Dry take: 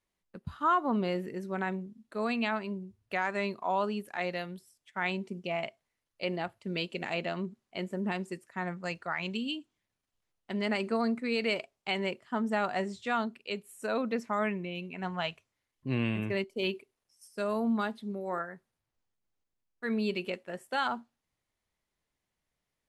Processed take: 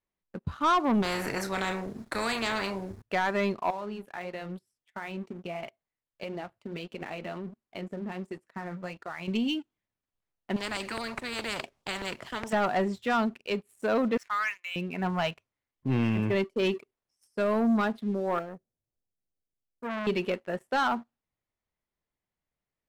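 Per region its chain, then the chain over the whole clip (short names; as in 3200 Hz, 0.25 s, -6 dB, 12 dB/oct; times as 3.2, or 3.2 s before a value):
1.02–3.02 bell 2900 Hz -10.5 dB 0.46 oct + doubler 31 ms -10 dB + spectral compressor 4:1
3.7–9.28 compressor, threshold -35 dBFS + flange 1.5 Hz, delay 2.2 ms, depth 6.2 ms, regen -59%
10.56–12.53 LFO notch saw down 4.8 Hz 290–2200 Hz + spectral compressor 4:1
14.17–14.76 HPF 1300 Hz 24 dB/oct + sample leveller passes 1
18.39–20.07 block floating point 7-bit + band shelf 1900 Hz -15 dB 2.4 oct + core saturation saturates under 2100 Hz
whole clip: high shelf 3900 Hz -11.5 dB; sample leveller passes 2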